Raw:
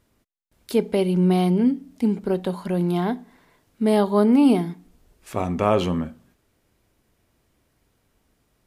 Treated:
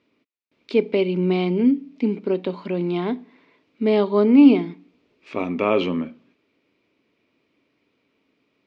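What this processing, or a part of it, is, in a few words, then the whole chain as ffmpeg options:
kitchen radio: -af "highpass=220,equalizer=f=280:t=q:w=4:g=7,equalizer=f=430:t=q:w=4:g=3,equalizer=f=770:t=q:w=4:g=-7,equalizer=f=1600:t=q:w=4:g=-6,equalizer=f=2400:t=q:w=4:g=9,lowpass=f=4500:w=0.5412,lowpass=f=4500:w=1.3066"

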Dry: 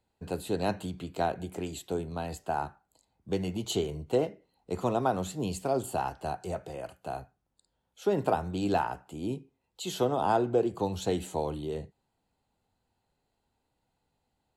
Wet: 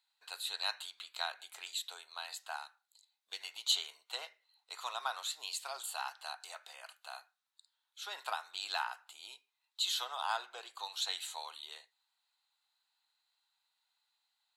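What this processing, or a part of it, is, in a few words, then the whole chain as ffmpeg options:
headphones lying on a table: -filter_complex "[0:a]asettb=1/sr,asplit=3[s0][s1][s2];[s0]atrim=end=2.564[s3];[s1]atrim=start=2.56:end=3.41,asetpts=PTS-STARTPTS,afade=t=in:d=0.004:c=qsin,afade=t=out:st=0.846:d=0.004:c=qsin,equalizer=f=1100:t=o:w=1.5:g=-8[s4];[s2]atrim=start=3.406[s5];[s3][s4]acrossfade=d=0.004:c1=hsin:c2=qsin[s6];[s6][s5]acrossfade=d=0.004:c1=qsin:c2=hsin,highpass=f=1100:w=0.5412,highpass=f=1100:w=1.3066,equalizer=f=3900:t=o:w=0.35:g=11"

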